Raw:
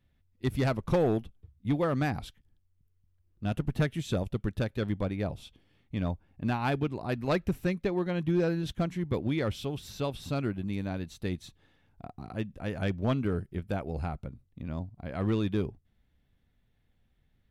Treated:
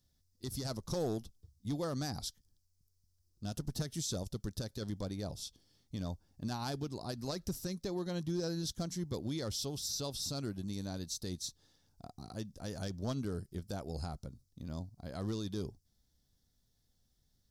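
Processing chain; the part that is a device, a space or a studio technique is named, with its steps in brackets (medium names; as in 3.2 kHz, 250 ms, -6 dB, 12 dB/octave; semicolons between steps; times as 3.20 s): over-bright horn tweeter (resonant high shelf 3.6 kHz +13.5 dB, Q 3; peak limiter -22 dBFS, peak gain reduction 11.5 dB); trim -6 dB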